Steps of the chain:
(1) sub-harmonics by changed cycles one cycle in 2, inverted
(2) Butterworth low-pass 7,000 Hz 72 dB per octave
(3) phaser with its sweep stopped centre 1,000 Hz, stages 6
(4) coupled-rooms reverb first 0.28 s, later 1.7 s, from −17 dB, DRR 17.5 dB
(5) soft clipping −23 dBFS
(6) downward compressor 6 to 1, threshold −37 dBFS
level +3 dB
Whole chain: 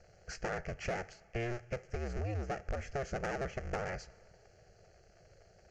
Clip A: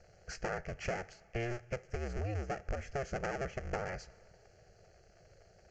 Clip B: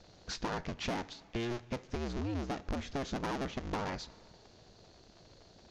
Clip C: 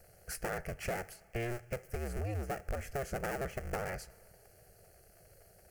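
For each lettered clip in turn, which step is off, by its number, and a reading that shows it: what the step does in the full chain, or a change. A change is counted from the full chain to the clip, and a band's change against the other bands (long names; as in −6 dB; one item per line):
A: 5, distortion level −18 dB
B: 3, 4 kHz band +8.5 dB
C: 2, 8 kHz band +5.0 dB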